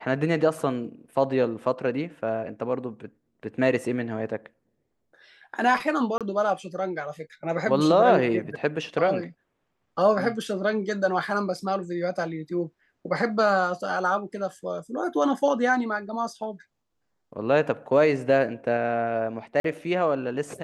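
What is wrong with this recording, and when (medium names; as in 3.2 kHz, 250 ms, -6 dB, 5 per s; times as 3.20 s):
6.18–6.21 s: dropout 27 ms
19.60–19.64 s: dropout 43 ms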